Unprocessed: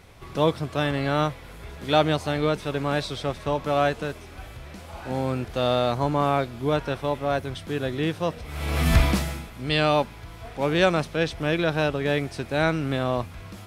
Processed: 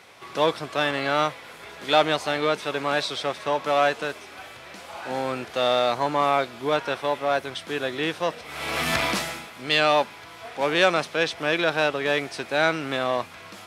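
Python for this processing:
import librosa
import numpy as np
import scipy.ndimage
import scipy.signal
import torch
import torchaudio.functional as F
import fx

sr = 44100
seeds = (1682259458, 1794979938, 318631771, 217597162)

p1 = np.clip(x, -10.0 ** (-20.0 / 20.0), 10.0 ** (-20.0 / 20.0))
p2 = x + F.gain(torch.from_numpy(p1), -4.0).numpy()
y = fx.weighting(p2, sr, curve='A')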